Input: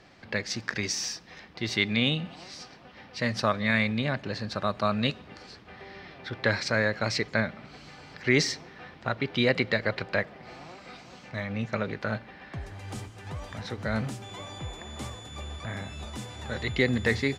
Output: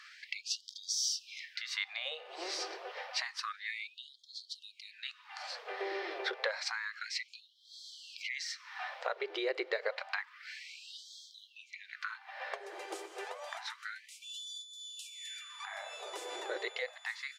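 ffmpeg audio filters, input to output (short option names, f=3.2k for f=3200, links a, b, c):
-af "lowshelf=f=400:g=11.5,acompressor=threshold=-33dB:ratio=6,afftfilt=real='re*gte(b*sr/1024,320*pow(3200/320,0.5+0.5*sin(2*PI*0.29*pts/sr)))':imag='im*gte(b*sr/1024,320*pow(3200/320,0.5+0.5*sin(2*PI*0.29*pts/sr)))':win_size=1024:overlap=0.75,volume=5dB"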